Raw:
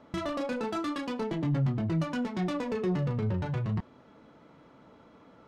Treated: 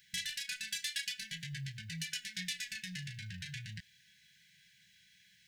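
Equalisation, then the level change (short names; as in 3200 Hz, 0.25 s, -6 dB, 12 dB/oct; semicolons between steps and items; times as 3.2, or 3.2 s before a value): brick-wall FIR band-stop 200–1500 Hz; pre-emphasis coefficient 0.97; +13.5 dB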